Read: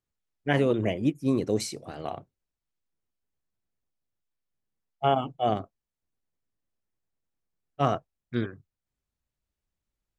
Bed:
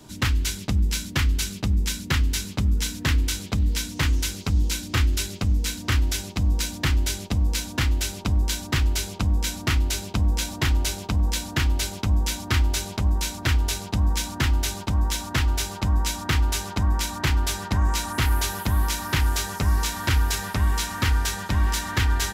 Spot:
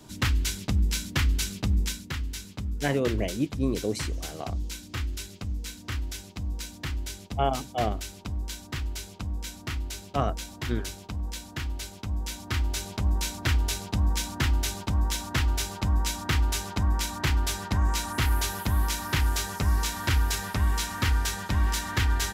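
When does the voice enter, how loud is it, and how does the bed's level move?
2.35 s, -2.5 dB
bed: 1.82 s -2.5 dB
2.12 s -10.5 dB
11.95 s -10.5 dB
13.15 s -3 dB

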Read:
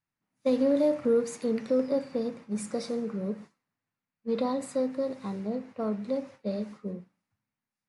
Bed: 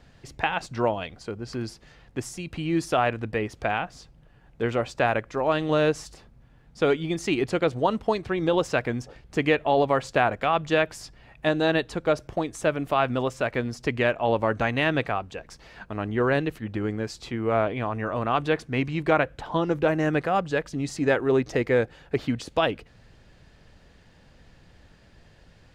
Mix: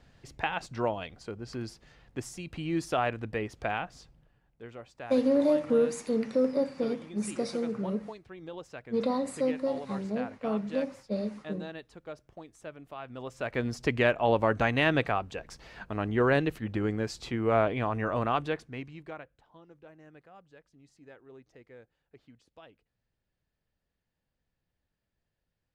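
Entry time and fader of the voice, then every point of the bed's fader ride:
4.65 s, 0.0 dB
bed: 4.12 s -5.5 dB
4.61 s -19.5 dB
13.04 s -19.5 dB
13.66 s -1.5 dB
18.22 s -1.5 dB
19.53 s -30 dB

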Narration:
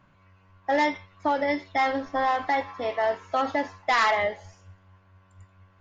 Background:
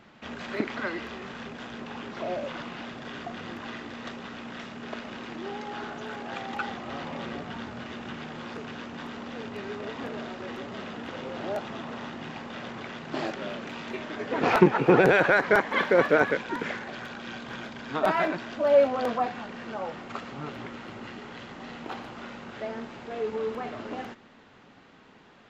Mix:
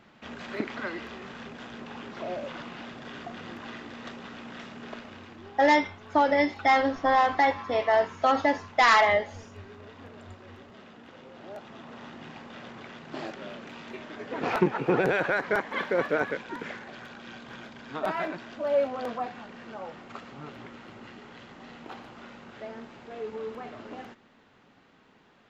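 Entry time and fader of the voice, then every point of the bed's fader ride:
4.90 s, +2.5 dB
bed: 4.84 s -2.5 dB
5.55 s -12 dB
11.36 s -12 dB
12.15 s -5.5 dB

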